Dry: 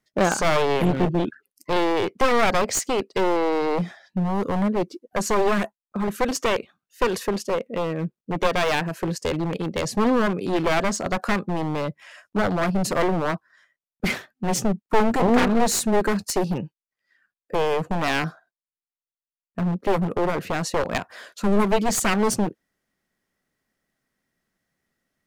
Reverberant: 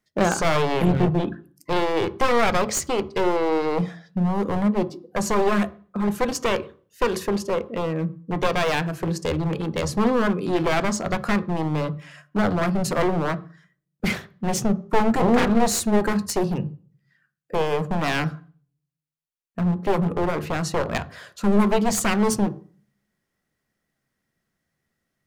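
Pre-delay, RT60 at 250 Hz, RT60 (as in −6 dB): 3 ms, 0.50 s, 0.45 s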